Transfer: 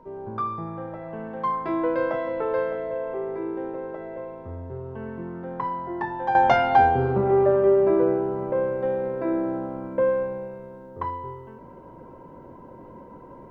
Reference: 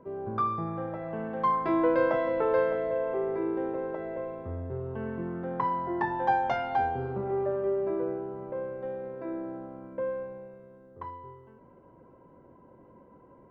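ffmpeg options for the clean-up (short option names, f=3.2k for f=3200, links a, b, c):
-af "bandreject=f=930:w=30,agate=range=-21dB:threshold=-36dB,asetnsamples=n=441:p=0,asendcmd='6.35 volume volume -10.5dB',volume=0dB"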